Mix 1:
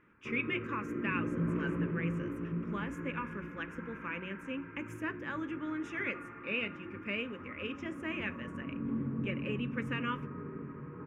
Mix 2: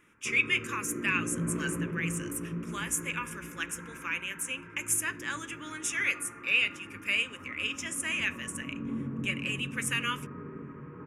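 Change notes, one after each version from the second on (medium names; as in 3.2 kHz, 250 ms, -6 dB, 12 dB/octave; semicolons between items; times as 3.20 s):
speech: add frequency weighting ITU-R 468; master: remove distance through air 210 m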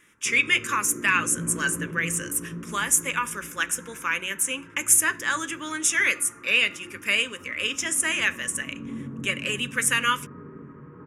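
speech +11.0 dB; master: add peaking EQ 2.5 kHz -7.5 dB 0.46 oct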